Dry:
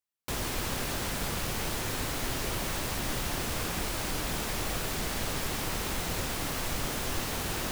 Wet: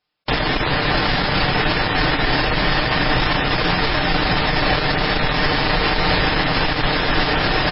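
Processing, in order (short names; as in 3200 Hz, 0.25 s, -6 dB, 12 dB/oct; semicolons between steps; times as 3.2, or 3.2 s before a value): bell 780 Hz +4 dB 0.4 oct; comb 6.6 ms, depth 53%; dynamic EQ 1800 Hz, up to +6 dB, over -58 dBFS, Q 6.3; one-sided clip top -39 dBFS, bottom -18.5 dBFS; feedback echo 0.38 s, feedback 37%, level -8 dB; maximiser +22.5 dB; gain -4.5 dB; MP3 16 kbps 12000 Hz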